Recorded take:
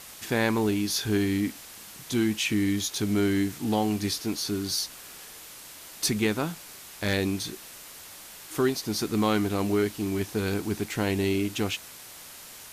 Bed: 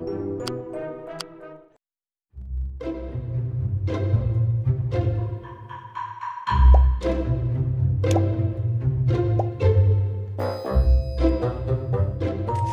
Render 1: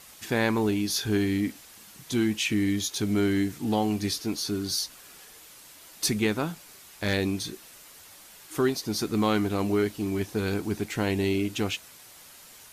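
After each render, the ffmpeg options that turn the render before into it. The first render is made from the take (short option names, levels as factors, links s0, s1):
-af "afftdn=nr=6:nf=-46"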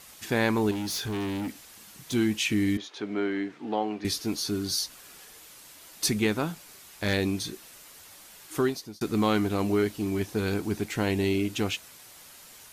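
-filter_complex "[0:a]asettb=1/sr,asplit=3[s0][s1][s2];[s0]atrim=end=0.714[s3];[s1]atrim=start=0.71:end=2.13,asetpts=PTS-STARTPTS,afade=t=in:d=0.004:c=qsin,afade=t=out:st=1.416:d=0.004:c=qsin,asoftclip=type=hard:threshold=0.0355[s4];[s2]atrim=start=2.126[s5];[s3][s4]acrossfade=d=0.004:c1=hsin:c2=qsin[s6];[s6][s5]acrossfade=d=0.004:c1=qsin:c2=hsin,asettb=1/sr,asplit=3[s7][s8][s9];[s7]atrim=end=2.774[s10];[s8]atrim=start=2.77:end=4.05,asetpts=PTS-STARTPTS,afade=t=in:d=0.004:c=qsin,afade=t=out:st=1.276:d=0.004:c=qsin,highpass=350,lowpass=2400[s11];[s9]atrim=start=4.046[s12];[s10][s11]acrossfade=d=0.004:c1=hsin:c2=qsin[s13];[s13][s12]acrossfade=d=0.004:c1=qsin:c2=hsin,asplit=2[s14][s15];[s14]atrim=end=9.01,asetpts=PTS-STARTPTS,afade=t=out:st=8.59:d=0.42[s16];[s15]atrim=start=9.01,asetpts=PTS-STARTPTS,afade=t=in:d=0.004:c=hsin[s17];[s16][s17]concat=n=2:v=0:a=1"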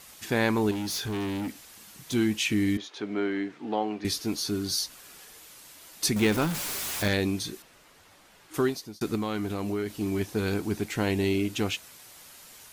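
-filter_complex "[0:a]asettb=1/sr,asplit=3[s0][s1][s2];[s0]atrim=end=6.164[s3];[s1]atrim=start=6.16:end=7.08,asetpts=PTS-STARTPTS,afade=t=in:d=0.004:c=qsin,afade=t=out:st=0.916:d=0.004:c=qsin,aeval=exprs='val(0)+0.5*0.0398*sgn(val(0))':c=same[s4];[s2]atrim=start=7.076[s5];[s3][s4]acrossfade=d=0.004:c1=hsin:c2=qsin[s6];[s6][s5]acrossfade=d=0.004:c1=qsin:c2=hsin,asettb=1/sr,asplit=3[s7][s8][s9];[s7]atrim=end=7.624[s10];[s8]atrim=start=7.62:end=8.54,asetpts=PTS-STARTPTS,afade=t=in:d=0.004:c=qsin,afade=t=out:st=0.916:d=0.004:c=qsin,lowpass=f=2000:p=1[s11];[s9]atrim=start=8.536[s12];[s10][s11]acrossfade=d=0.004:c1=hsin:c2=qsin[s13];[s13][s12]acrossfade=d=0.004:c1=qsin:c2=hsin,asettb=1/sr,asplit=3[s14][s15][s16];[s14]atrim=end=9.154[s17];[s15]atrim=start=9.15:end=10.01,asetpts=PTS-STARTPTS,afade=t=in:d=0.004:c=qsin,afade=t=out:st=0.856:d=0.004:c=qsin,acompressor=threshold=0.0398:ratio=3:attack=3.2:release=140:knee=1:detection=peak[s18];[s16]atrim=start=10.006[s19];[s17][s18]acrossfade=d=0.004:c1=hsin:c2=qsin[s20];[s20][s19]acrossfade=d=0.004:c1=qsin:c2=hsin"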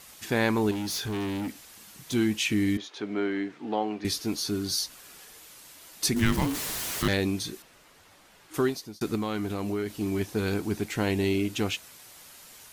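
-filter_complex "[0:a]asettb=1/sr,asplit=3[s0][s1][s2];[s0]atrim=end=6.144[s3];[s1]atrim=start=6.14:end=7.08,asetpts=PTS-STARTPTS,afade=t=in:d=0.004:c=qsin,afade=t=out:st=0.936:d=0.004:c=qsin,afreqshift=-450[s4];[s2]atrim=start=7.076[s5];[s3][s4]acrossfade=d=0.004:c1=hsin:c2=qsin[s6];[s6][s5]acrossfade=d=0.004:c1=qsin:c2=hsin"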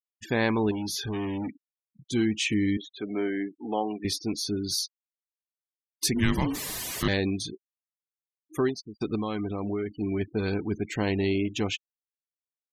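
-af "afftfilt=real='re*gte(hypot(re,im),0.0158)':imag='im*gte(hypot(re,im),0.0158)':win_size=1024:overlap=0.75,bandreject=f=1400:w=9"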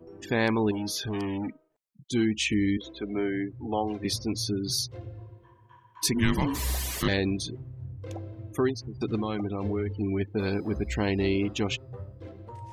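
-filter_complex "[1:a]volume=0.126[s0];[0:a][s0]amix=inputs=2:normalize=0"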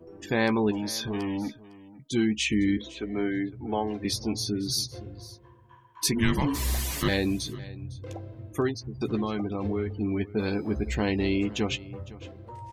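-filter_complex "[0:a]asplit=2[s0][s1];[s1]adelay=14,volume=0.316[s2];[s0][s2]amix=inputs=2:normalize=0,aecho=1:1:507:0.112"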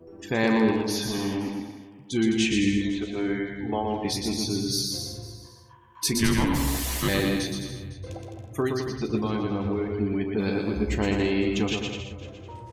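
-filter_complex "[0:a]asplit=2[s0][s1];[s1]adelay=36,volume=0.2[s2];[s0][s2]amix=inputs=2:normalize=0,asplit=2[s3][s4];[s4]aecho=0:1:120|210|277.5|328.1|366.1:0.631|0.398|0.251|0.158|0.1[s5];[s3][s5]amix=inputs=2:normalize=0"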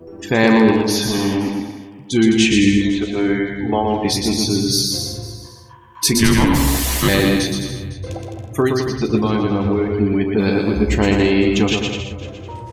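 -af "volume=2.99,alimiter=limit=0.794:level=0:latency=1"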